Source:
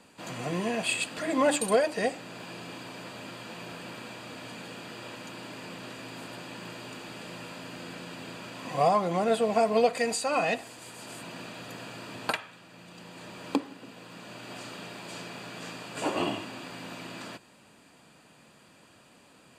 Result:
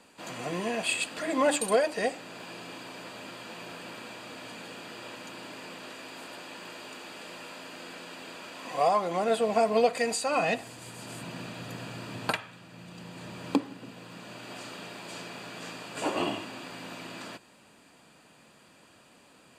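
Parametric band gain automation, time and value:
parametric band 120 Hz 1.6 octaves
0:05.45 −6.5 dB
0:06.03 −14.5 dB
0:08.94 −14.5 dB
0:09.57 −2.5 dB
0:10.25 −2.5 dB
0:10.69 +7.5 dB
0:13.81 +7.5 dB
0:14.56 −3 dB

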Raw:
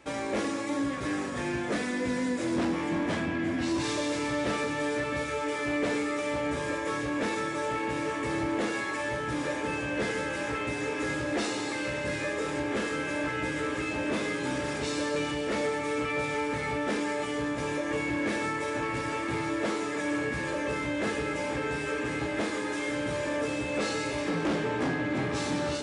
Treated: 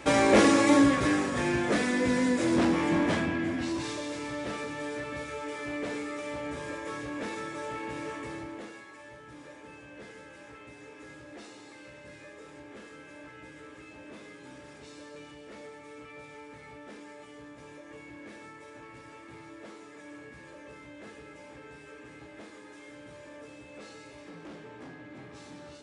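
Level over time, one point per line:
0:00.74 +10.5 dB
0:01.24 +3.5 dB
0:03.02 +3.5 dB
0:04.01 −6 dB
0:08.14 −6 dB
0:08.87 −17 dB

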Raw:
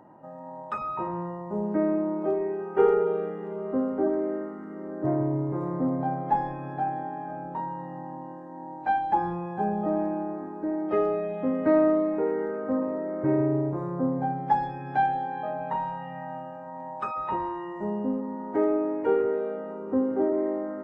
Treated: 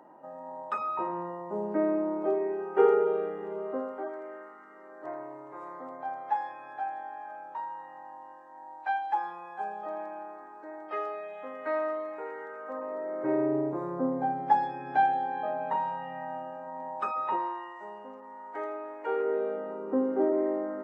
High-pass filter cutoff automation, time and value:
0:03.57 320 Hz
0:04.11 980 Hz
0:12.60 980 Hz
0:13.59 270 Hz
0:17.20 270 Hz
0:17.78 1,000 Hz
0:18.99 1,000 Hz
0:19.43 270 Hz

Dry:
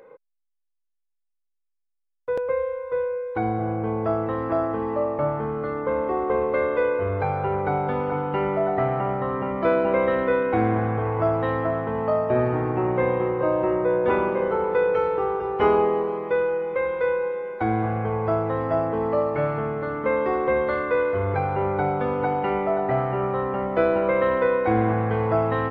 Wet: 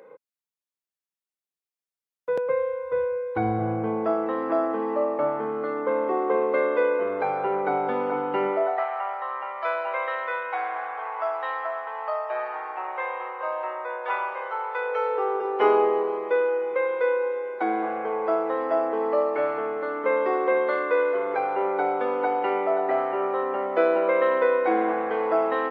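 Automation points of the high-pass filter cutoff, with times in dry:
high-pass filter 24 dB per octave
0:02.36 140 Hz
0:02.94 63 Hz
0:03.52 63 Hz
0:04.14 230 Hz
0:08.46 230 Hz
0:08.86 740 Hz
0:14.73 740 Hz
0:15.42 310 Hz

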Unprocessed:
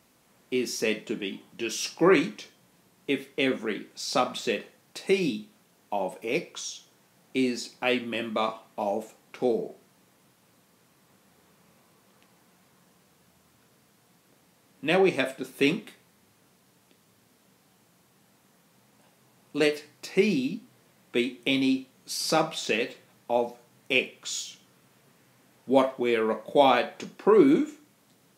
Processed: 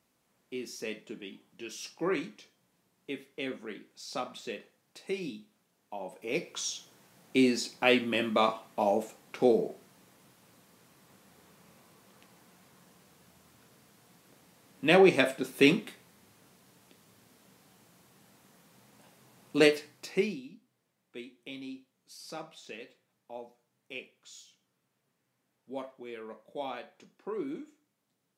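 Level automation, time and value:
0:06.00 −11 dB
0:06.65 +1.5 dB
0:19.66 +1.5 dB
0:20.22 −6 dB
0:20.42 −18 dB

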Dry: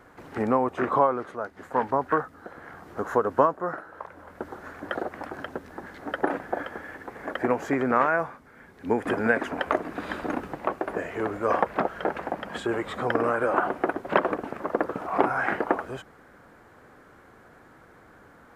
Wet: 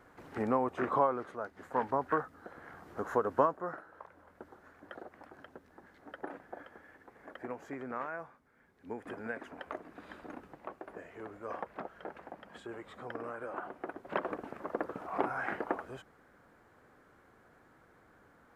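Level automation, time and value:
0:03.45 −7 dB
0:04.67 −17 dB
0:13.74 −17 dB
0:14.39 −10 dB

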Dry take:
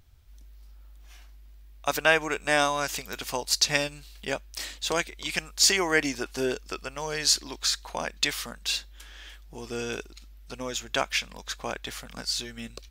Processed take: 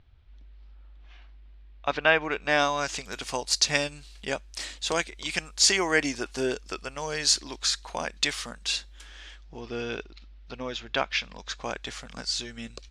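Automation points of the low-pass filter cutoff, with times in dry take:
low-pass filter 24 dB per octave
0:02.19 3,800 Hz
0:03.14 9,600 Hz
0:09.16 9,600 Hz
0:09.63 4,500 Hz
0:11.01 4,500 Hz
0:11.81 8,200 Hz

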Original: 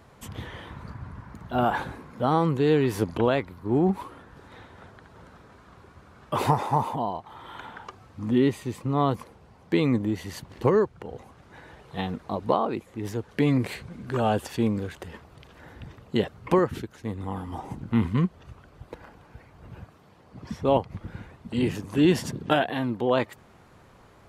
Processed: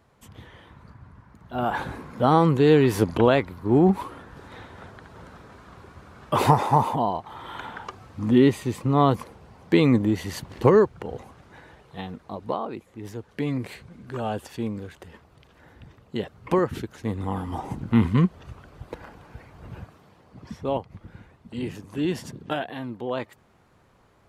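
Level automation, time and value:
0:01.38 −8 dB
0:01.96 +4.5 dB
0:11.15 +4.5 dB
0:12.02 −5 dB
0:16.19 −5 dB
0:16.97 +4 dB
0:19.74 +4 dB
0:20.85 −6 dB

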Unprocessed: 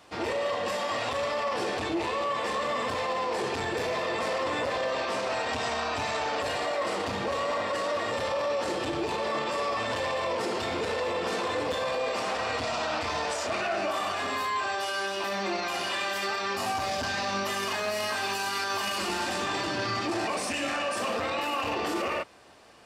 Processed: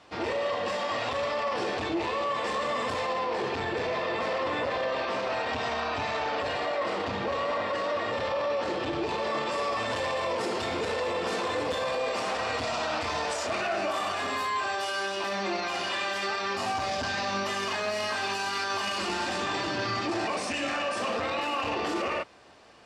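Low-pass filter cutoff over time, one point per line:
0:02.05 6,000 Hz
0:02.95 11,000 Hz
0:03.27 4,400 Hz
0:08.85 4,400 Hz
0:09.74 12,000 Hz
0:14.70 12,000 Hz
0:15.67 7,100 Hz

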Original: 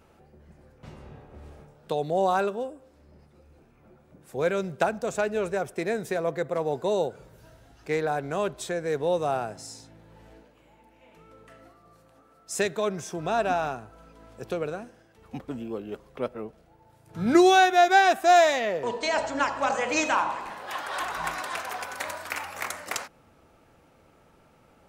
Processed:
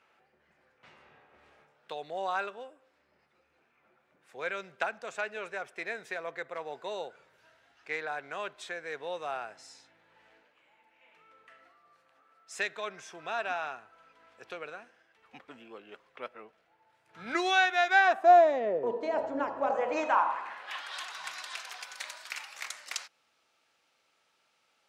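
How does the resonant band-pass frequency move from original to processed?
resonant band-pass, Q 1.1
0:17.91 2,100 Hz
0:18.46 420 Hz
0:19.56 420 Hz
0:20.23 1,000 Hz
0:20.98 4,300 Hz

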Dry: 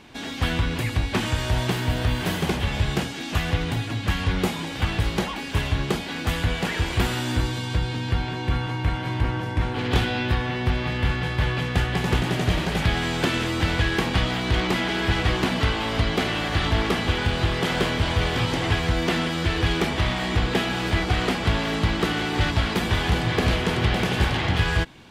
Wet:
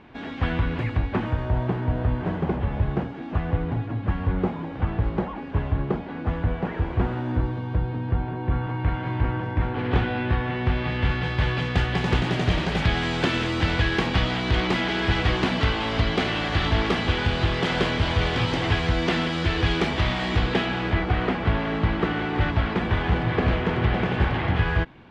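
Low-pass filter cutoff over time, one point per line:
0:00.82 2,000 Hz
0:01.48 1,100 Hz
0:08.37 1,100 Hz
0:08.95 2,000 Hz
0:10.24 2,000 Hz
0:11.44 5,100 Hz
0:20.38 5,100 Hz
0:21.03 2,100 Hz

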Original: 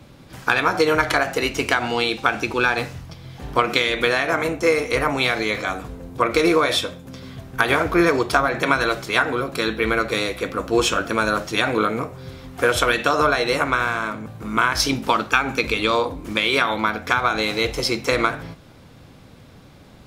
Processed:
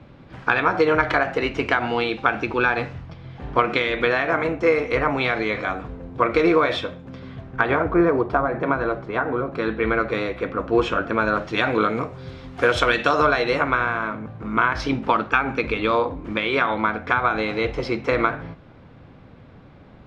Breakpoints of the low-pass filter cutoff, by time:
0:07.38 2,500 Hz
0:08.03 1,100 Hz
0:09.20 1,100 Hz
0:09.86 2,000 Hz
0:11.16 2,000 Hz
0:11.97 4,400 Hz
0:13.11 4,400 Hz
0:13.90 2,200 Hz

